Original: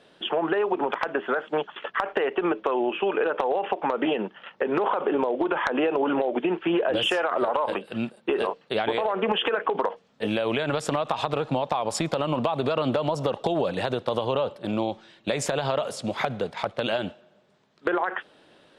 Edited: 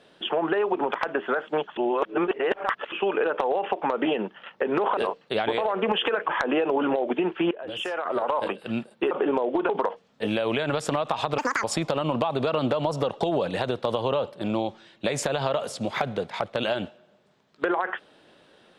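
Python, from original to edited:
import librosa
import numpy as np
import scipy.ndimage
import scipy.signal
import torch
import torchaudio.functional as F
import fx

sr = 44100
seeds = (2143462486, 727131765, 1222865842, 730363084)

y = fx.edit(x, sr, fx.reverse_span(start_s=1.77, length_s=1.15),
    fx.swap(start_s=4.97, length_s=0.58, other_s=8.37, other_length_s=1.32),
    fx.fade_in_from(start_s=6.77, length_s=0.88, floor_db=-18.5),
    fx.speed_span(start_s=11.38, length_s=0.49, speed=1.91), tone=tone)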